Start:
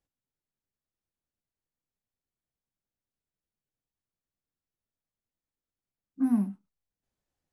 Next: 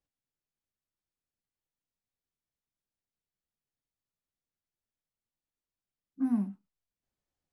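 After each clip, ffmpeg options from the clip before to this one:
-af "lowpass=8.2k,volume=-3.5dB"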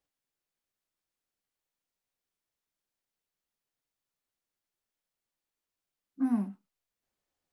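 -af "bass=f=250:g=-8,treble=f=4k:g=-1,volume=4.5dB"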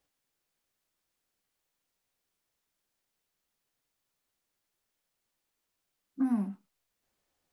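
-af "acompressor=threshold=-35dB:ratio=2.5,volume=6.5dB"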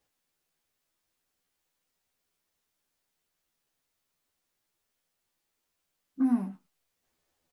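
-filter_complex "[0:a]asplit=2[a][b];[b]adelay=12,volume=-3dB[c];[a][c]amix=inputs=2:normalize=0"

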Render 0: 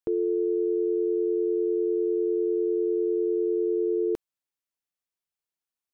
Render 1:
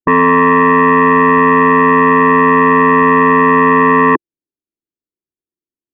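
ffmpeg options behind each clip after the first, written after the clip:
-af "lowpass=f=340:t=q:w=3.6,afwtdn=0.0398,aeval=exprs='0.282*sin(PI/2*3.55*val(0)/0.282)':c=same,volume=5dB"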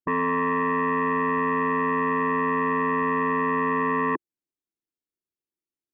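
-af "alimiter=limit=-16.5dB:level=0:latency=1,volume=-4.5dB"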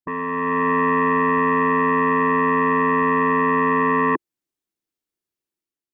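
-af "dynaudnorm=f=140:g=7:m=8dB,volume=-2.5dB"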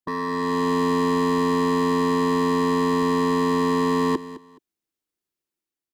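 -filter_complex "[0:a]acrossover=split=190|670[a][b][c];[c]asoftclip=type=hard:threshold=-27dB[d];[a][b][d]amix=inputs=3:normalize=0,aecho=1:1:211|422:0.168|0.0369"

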